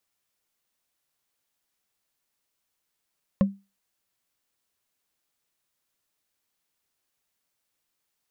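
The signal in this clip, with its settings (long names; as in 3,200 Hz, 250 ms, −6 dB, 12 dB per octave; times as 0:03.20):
struck wood, lowest mode 197 Hz, decay 0.26 s, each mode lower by 7 dB, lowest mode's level −13 dB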